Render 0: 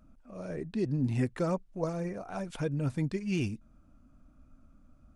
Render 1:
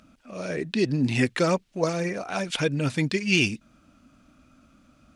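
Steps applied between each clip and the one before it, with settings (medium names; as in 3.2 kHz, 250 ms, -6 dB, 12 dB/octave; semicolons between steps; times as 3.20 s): frequency weighting D; trim +8.5 dB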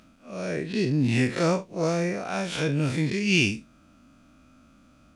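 spectral blur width 99 ms; trim +2.5 dB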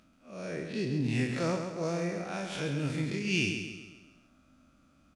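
feedback delay 134 ms, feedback 47%, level -7 dB; trim -8 dB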